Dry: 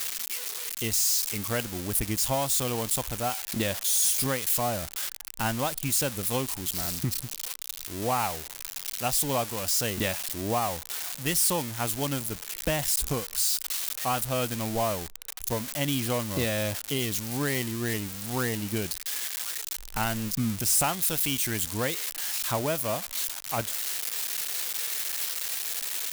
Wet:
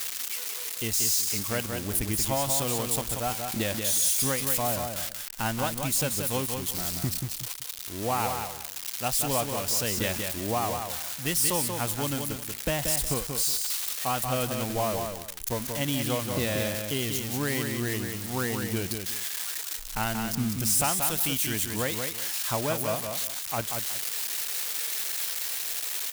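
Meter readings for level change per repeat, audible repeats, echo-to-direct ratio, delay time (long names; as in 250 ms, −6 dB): −12.5 dB, 2, −5.5 dB, 183 ms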